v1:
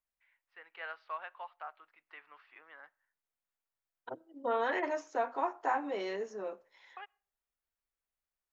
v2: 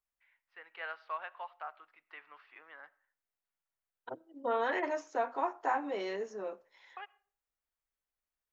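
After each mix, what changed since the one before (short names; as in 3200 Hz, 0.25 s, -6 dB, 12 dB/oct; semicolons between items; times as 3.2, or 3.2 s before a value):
first voice: send +10.5 dB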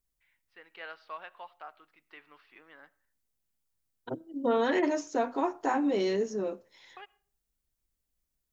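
first voice -4.0 dB; master: remove three-band isolator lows -17 dB, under 540 Hz, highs -12 dB, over 2500 Hz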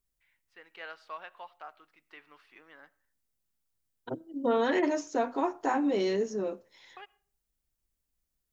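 first voice: remove polynomial smoothing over 15 samples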